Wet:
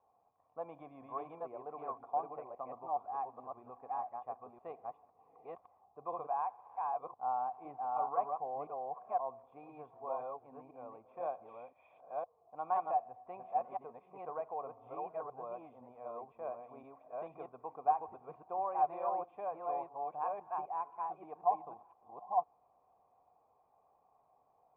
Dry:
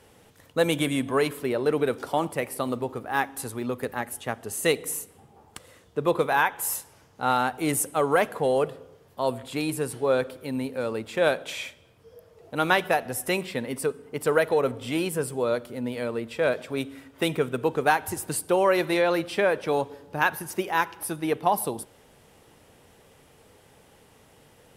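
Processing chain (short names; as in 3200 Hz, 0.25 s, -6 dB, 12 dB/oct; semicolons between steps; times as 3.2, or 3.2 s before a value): reverse delay 0.51 s, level -1 dB; vocal tract filter a; gain -3.5 dB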